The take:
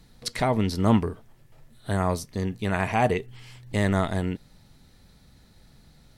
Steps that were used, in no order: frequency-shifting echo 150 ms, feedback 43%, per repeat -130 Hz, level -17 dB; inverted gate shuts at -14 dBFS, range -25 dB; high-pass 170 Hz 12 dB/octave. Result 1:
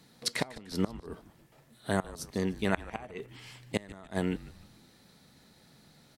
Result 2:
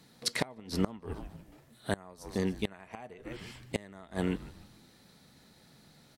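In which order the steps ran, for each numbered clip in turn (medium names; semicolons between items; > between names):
inverted gate > high-pass > frequency-shifting echo; high-pass > frequency-shifting echo > inverted gate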